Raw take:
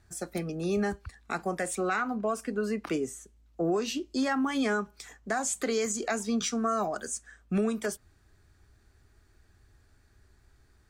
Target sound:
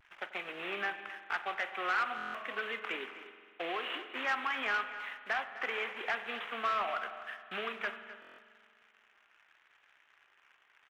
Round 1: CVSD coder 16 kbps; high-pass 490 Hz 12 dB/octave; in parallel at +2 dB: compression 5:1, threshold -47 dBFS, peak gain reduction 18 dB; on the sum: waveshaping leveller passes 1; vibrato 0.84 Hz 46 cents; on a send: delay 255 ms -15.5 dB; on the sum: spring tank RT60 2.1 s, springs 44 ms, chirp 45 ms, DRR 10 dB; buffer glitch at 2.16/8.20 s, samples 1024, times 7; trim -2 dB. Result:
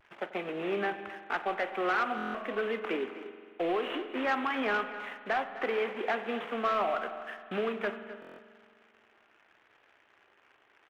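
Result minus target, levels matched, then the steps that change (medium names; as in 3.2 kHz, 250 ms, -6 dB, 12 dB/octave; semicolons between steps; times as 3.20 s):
500 Hz band +7.0 dB
change: high-pass 1.2 kHz 12 dB/octave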